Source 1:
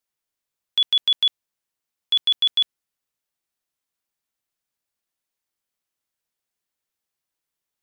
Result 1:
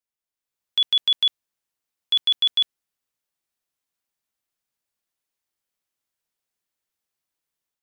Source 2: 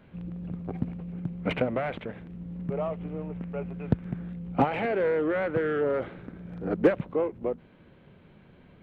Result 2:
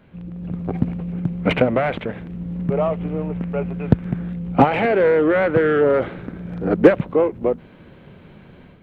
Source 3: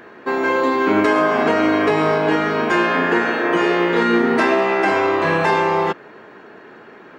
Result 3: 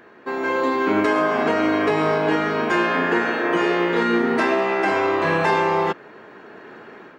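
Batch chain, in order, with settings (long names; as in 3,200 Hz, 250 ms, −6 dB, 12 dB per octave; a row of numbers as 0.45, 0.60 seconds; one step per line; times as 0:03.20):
automatic gain control gain up to 7.5 dB
loudness normalisation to −20 LKFS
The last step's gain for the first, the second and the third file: −8.0, +3.0, −6.5 decibels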